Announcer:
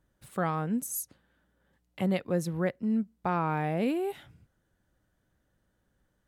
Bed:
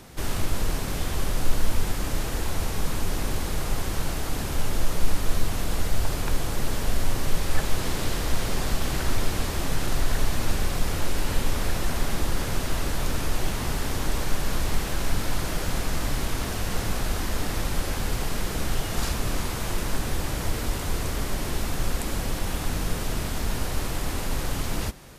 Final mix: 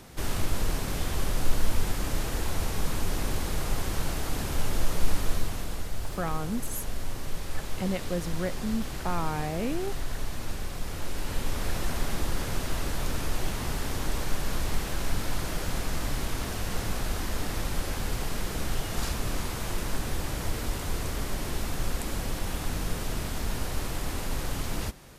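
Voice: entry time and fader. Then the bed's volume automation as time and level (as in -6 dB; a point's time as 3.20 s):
5.80 s, -2.5 dB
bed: 5.20 s -2 dB
5.87 s -9 dB
10.78 s -9 dB
11.76 s -3.5 dB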